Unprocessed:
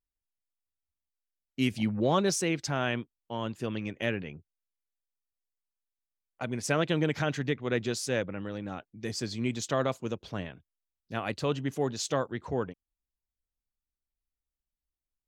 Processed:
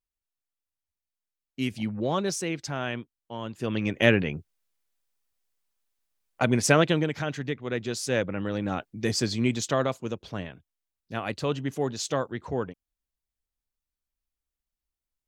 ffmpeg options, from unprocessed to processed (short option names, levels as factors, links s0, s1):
-af "volume=11.9,afade=t=in:st=3.52:d=0.56:silence=0.237137,afade=t=out:st=6.51:d=0.58:silence=0.251189,afade=t=in:st=7.84:d=1.03:silence=0.298538,afade=t=out:st=8.87:d=1.05:silence=0.398107"